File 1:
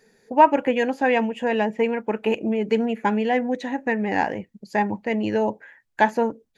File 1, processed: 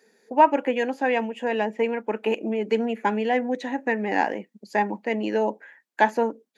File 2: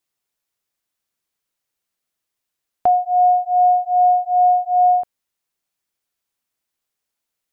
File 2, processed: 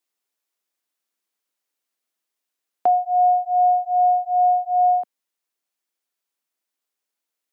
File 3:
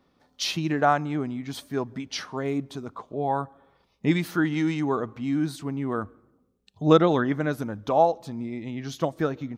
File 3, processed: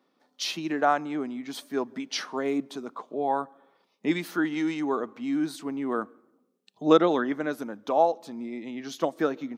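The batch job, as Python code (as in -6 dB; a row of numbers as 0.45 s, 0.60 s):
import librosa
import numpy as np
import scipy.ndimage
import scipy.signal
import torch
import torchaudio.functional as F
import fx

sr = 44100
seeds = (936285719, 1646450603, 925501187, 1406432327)

y = scipy.signal.sosfilt(scipy.signal.butter(4, 220.0, 'highpass', fs=sr, output='sos'), x)
y = fx.rider(y, sr, range_db=4, speed_s=2.0)
y = y * librosa.db_to_amplitude(-2.5)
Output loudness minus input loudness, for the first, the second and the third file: -2.0 LU, -3.0 LU, -2.0 LU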